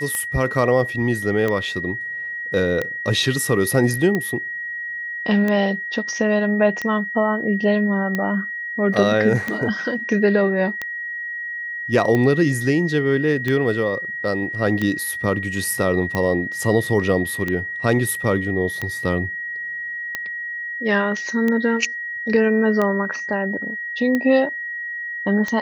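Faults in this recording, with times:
scratch tick 45 rpm −10 dBFS
whistle 1,900 Hz −26 dBFS
0:08.94: drop-out 2.3 ms

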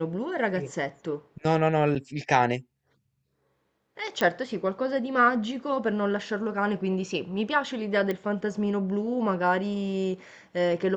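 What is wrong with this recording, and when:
0:01.95–0:01.96: drop-out 6.8 ms
0:04.21: click −12 dBFS
0:08.11: click −17 dBFS

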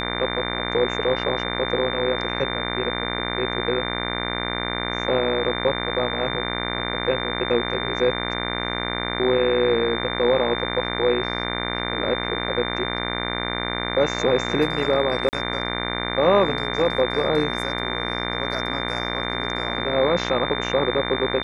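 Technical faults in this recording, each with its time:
mains buzz 60 Hz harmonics 39 −28 dBFS
whistle 3,600 Hz −30 dBFS
0:15.29–0:15.33: drop-out 39 ms

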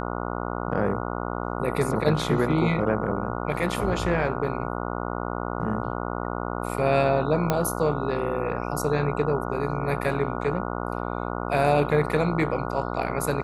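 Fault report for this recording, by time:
mains buzz 60 Hz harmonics 24 −30 dBFS
0:07.50: click −8 dBFS

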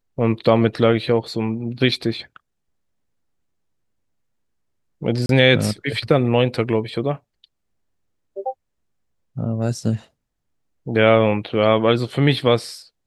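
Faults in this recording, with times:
0:05.26–0:05.29: drop-out 32 ms

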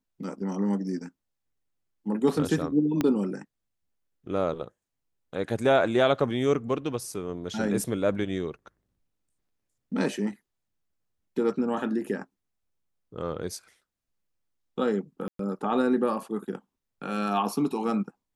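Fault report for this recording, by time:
0:03.01: click −12 dBFS
0:15.28–0:15.39: drop-out 113 ms

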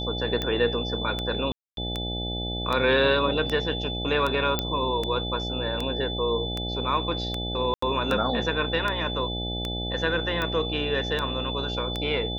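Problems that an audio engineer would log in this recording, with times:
mains buzz 60 Hz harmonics 14 −32 dBFS
scratch tick 78 rpm −14 dBFS
whistle 3,500 Hz −32 dBFS
0:01.52–0:01.77: drop-out 252 ms
0:04.59: click −9 dBFS
0:07.74–0:07.82: drop-out 84 ms

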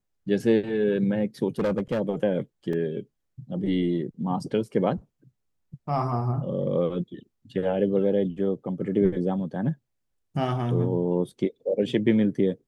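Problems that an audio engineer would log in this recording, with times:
0:01.59–0:02.01: clipping −20.5 dBFS
0:02.73: drop-out 3 ms

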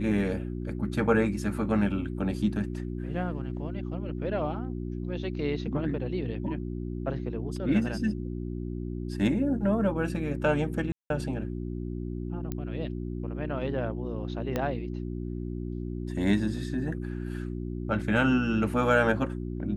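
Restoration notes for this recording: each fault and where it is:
mains hum 60 Hz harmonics 6 −34 dBFS
0:10.92–0:11.10: drop-out 182 ms
0:12.52: click −19 dBFS
0:14.56: click −15 dBFS

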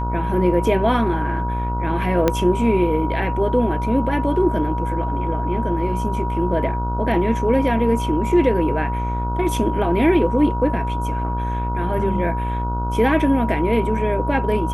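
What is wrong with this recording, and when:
mains buzz 60 Hz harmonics 25 −24 dBFS
whistle 960 Hz −26 dBFS
0:02.28: click −4 dBFS

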